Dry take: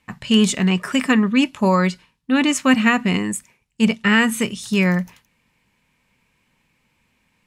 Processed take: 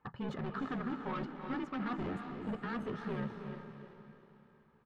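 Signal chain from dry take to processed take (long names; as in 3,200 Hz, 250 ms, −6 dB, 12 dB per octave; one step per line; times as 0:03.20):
high-pass filter 84 Hz 12 dB per octave
high shelf with overshoot 1,800 Hz −8.5 dB, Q 3
comb filter 2.4 ms, depth 37%
reversed playback
downward compressor, threshold −25 dBFS, peak gain reduction 14.5 dB
reversed playback
gain into a clipping stage and back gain 30 dB
high-frequency loss of the air 320 metres
on a send: feedback delay with all-pass diffusion 519 ms, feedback 45%, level −6 dB
on the sum: time stretch by overlap-add 0.65×, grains 30 ms
level −3.5 dB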